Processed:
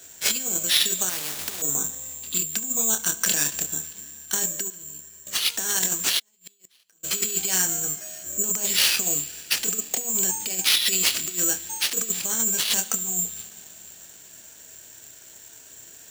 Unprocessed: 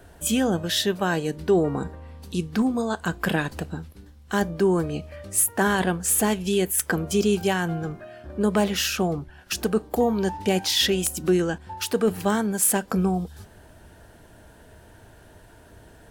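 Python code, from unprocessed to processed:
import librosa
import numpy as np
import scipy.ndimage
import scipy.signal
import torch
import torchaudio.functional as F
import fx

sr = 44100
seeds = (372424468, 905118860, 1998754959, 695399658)

y = fx.doubler(x, sr, ms=27.0, db=-7.0)
y = fx.over_compress(y, sr, threshold_db=-23.0, ratio=-0.5)
y = fx.tone_stack(y, sr, knobs='10-0-1', at=(4.7, 5.27))
y = fx.echo_feedback(y, sr, ms=71, feedback_pct=57, wet_db=-22.5)
y = fx.rev_schroeder(y, sr, rt60_s=3.8, comb_ms=28, drr_db=17.0)
y = fx.gate_flip(y, sr, shuts_db=-17.0, range_db=-40, at=(6.18, 7.03), fade=0.02)
y = (np.kron(y[::6], np.eye(6)[0]) * 6)[:len(y)]
y = fx.weighting(y, sr, curve='D')
y = fx.spectral_comp(y, sr, ratio=4.0, at=(1.09, 1.62))
y = F.gain(torch.from_numpy(y), -11.0).numpy()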